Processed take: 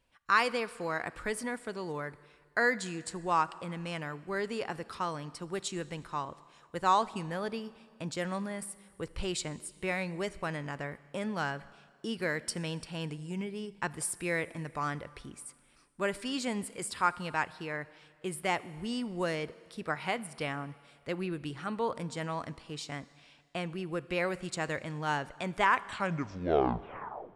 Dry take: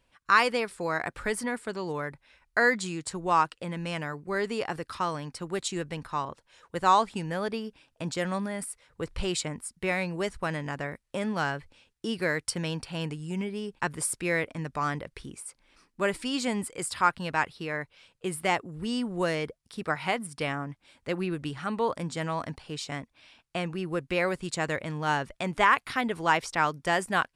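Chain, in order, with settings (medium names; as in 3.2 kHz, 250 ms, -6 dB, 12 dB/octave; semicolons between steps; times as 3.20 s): tape stop on the ending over 1.74 s; Schroeder reverb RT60 2 s, combs from 27 ms, DRR 18 dB; trim -4.5 dB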